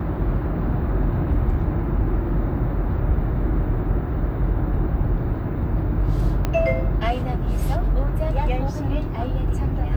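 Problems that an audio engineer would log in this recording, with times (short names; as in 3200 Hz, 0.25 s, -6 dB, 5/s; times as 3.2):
6.45 pop -9 dBFS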